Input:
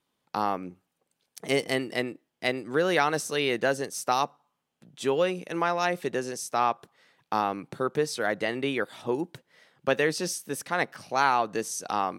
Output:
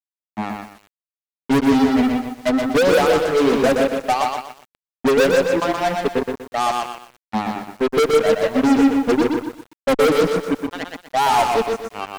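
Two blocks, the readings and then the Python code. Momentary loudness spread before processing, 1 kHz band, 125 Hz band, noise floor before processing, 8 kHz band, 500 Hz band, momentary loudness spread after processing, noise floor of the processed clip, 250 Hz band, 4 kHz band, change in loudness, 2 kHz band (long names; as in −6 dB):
7 LU, +7.0 dB, +7.5 dB, −81 dBFS, +2.0 dB, +10.5 dB, 13 LU, below −85 dBFS, +15.0 dB, +6.5 dB, +9.5 dB, +5.0 dB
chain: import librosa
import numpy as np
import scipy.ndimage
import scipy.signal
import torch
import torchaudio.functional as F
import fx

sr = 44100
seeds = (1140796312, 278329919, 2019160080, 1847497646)

y = fx.bin_expand(x, sr, power=3.0)
y = fx.double_bandpass(y, sr, hz=360.0, octaves=0.72)
y = fx.echo_feedback(y, sr, ms=155, feedback_pct=33, wet_db=-10.0)
y = fx.fuzz(y, sr, gain_db=49.0, gate_db=-55.0)
y = fx.echo_crushed(y, sr, ms=122, feedback_pct=35, bits=7, wet_db=-4.0)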